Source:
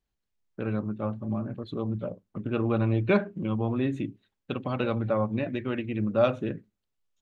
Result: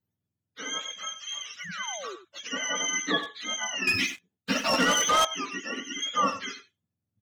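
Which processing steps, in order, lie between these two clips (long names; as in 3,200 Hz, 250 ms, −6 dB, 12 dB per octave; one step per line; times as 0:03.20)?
frequency axis turned over on the octave scale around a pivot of 830 Hz
0:00.99–0:02.04: flat-topped bell 520 Hz −13 dB 2.4 octaves
0:01.60–0:02.16: sound drawn into the spectrogram fall 340–2,300 Hz −40 dBFS
far-end echo of a speakerphone 90 ms, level −11 dB
0:03.87–0:05.25: leveller curve on the samples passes 3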